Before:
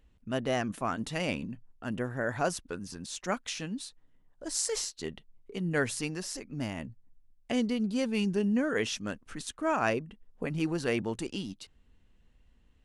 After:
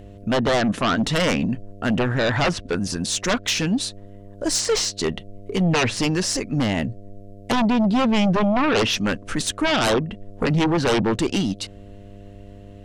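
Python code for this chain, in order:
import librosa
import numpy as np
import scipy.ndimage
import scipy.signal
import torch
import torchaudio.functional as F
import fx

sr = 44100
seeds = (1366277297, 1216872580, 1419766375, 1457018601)

y = fx.env_lowpass_down(x, sr, base_hz=2900.0, full_db=-26.0)
y = fx.fold_sine(y, sr, drive_db=16, ceiling_db=-12.5)
y = fx.dmg_buzz(y, sr, base_hz=100.0, harmonics=7, level_db=-40.0, tilt_db=-4, odd_only=False)
y = F.gain(torch.from_numpy(y), -3.0).numpy()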